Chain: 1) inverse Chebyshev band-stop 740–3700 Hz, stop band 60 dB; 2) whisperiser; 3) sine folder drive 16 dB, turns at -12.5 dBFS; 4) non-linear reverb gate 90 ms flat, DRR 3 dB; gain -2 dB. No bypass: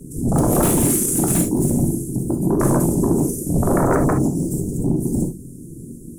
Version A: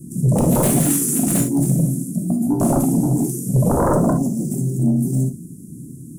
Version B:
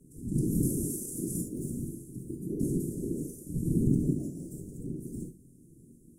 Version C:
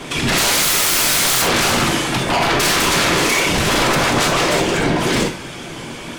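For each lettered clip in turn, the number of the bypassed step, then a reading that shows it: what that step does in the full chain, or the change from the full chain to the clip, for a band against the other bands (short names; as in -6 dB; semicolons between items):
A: 2, 2 kHz band -3.5 dB; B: 3, crest factor change +6.0 dB; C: 1, 2 kHz band +18.0 dB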